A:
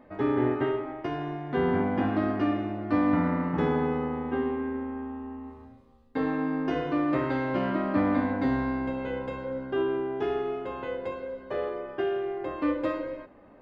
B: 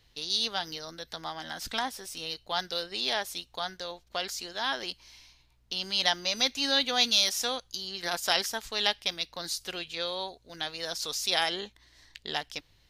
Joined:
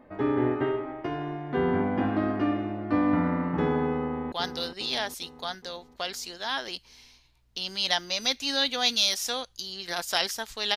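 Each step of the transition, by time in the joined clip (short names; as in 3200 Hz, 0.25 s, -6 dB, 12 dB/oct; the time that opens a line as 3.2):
A
3.98–4.32 echo throw 0.41 s, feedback 55%, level -8 dB
4.32 switch to B from 2.47 s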